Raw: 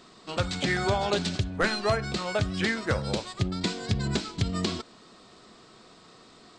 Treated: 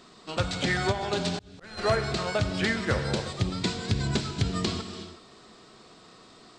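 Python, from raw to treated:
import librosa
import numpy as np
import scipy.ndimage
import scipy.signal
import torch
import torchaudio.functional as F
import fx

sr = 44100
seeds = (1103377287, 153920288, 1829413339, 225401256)

y = fx.rev_gated(x, sr, seeds[0], gate_ms=400, shape='flat', drr_db=7.0)
y = fx.auto_swell(y, sr, attack_ms=709.0, at=(0.91, 1.77), fade=0.02)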